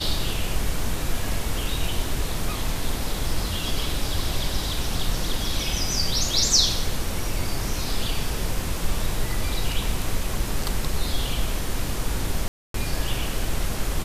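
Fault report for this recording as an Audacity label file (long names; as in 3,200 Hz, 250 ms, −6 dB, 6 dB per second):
12.480000	12.740000	drop-out 263 ms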